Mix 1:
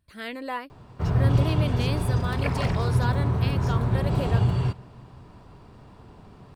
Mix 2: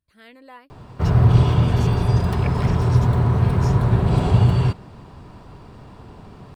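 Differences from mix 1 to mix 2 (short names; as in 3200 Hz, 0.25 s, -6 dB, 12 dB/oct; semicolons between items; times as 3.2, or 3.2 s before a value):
speech -11.5 dB; first sound +7.5 dB; reverb: off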